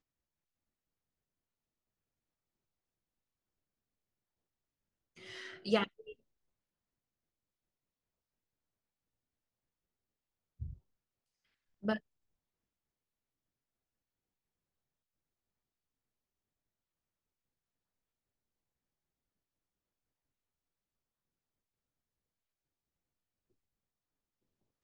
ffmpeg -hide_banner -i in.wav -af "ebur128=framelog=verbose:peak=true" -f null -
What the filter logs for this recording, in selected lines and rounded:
Integrated loudness:
  I:         -38.2 LUFS
  Threshold: -49.6 LUFS
Loudness range:
  LRA:        15.6 LU
  Threshold: -65.0 LUFS
  LRA low:   -57.5 LUFS
  LRA high:  -41.9 LUFS
True peak:
  Peak:      -16.1 dBFS